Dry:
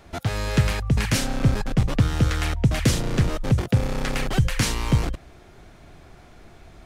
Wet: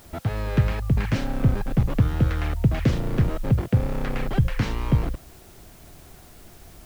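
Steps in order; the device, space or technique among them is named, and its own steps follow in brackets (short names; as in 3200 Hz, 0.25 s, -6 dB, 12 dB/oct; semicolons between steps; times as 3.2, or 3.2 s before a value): cassette deck with a dirty head (tape spacing loss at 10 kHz 28 dB; wow and flutter; white noise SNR 30 dB)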